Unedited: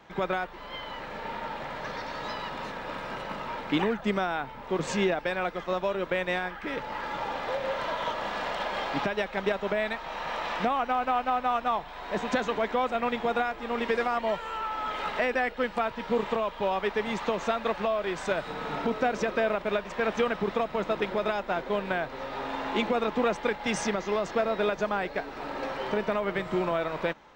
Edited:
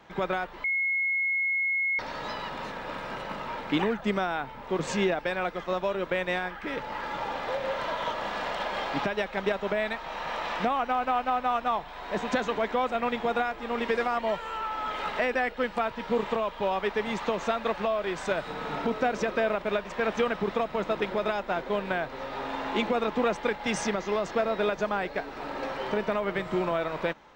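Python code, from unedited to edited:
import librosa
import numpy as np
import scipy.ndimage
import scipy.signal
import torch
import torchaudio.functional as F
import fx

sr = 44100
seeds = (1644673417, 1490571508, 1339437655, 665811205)

y = fx.edit(x, sr, fx.bleep(start_s=0.64, length_s=1.35, hz=2170.0, db=-24.0), tone=tone)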